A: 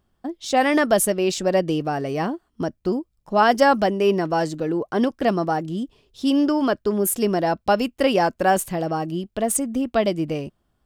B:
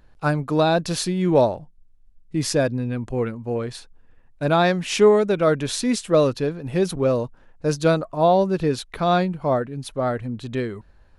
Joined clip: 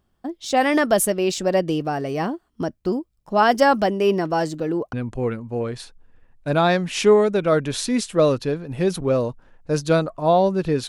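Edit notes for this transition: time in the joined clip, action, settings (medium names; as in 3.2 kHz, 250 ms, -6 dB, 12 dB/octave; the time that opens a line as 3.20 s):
A
4.93 s: go over to B from 2.88 s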